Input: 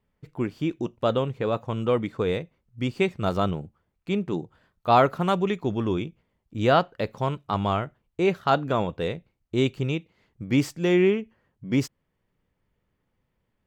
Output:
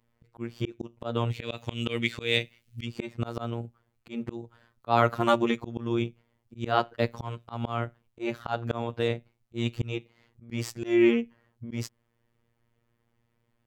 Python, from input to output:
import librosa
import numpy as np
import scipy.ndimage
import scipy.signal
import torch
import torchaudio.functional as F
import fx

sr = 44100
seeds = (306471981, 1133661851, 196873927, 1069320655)

y = fx.high_shelf_res(x, sr, hz=1700.0, db=13.0, q=1.5, at=(1.3, 2.84), fade=0.02)
y = fx.robotise(y, sr, hz=117.0)
y = fx.auto_swell(y, sr, attack_ms=230.0)
y = F.gain(torch.from_numpy(y), 4.0).numpy()